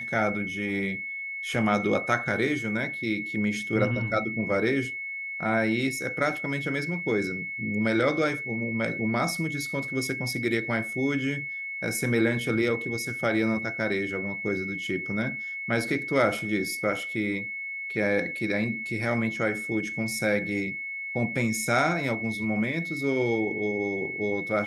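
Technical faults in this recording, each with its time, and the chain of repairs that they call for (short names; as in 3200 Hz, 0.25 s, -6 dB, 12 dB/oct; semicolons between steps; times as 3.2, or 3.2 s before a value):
tone 2200 Hz -32 dBFS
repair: notch 2200 Hz, Q 30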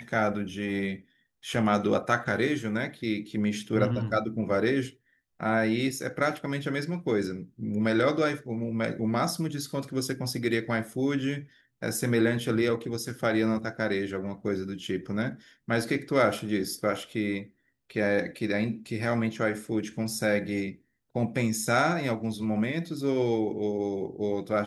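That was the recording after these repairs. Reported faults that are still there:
none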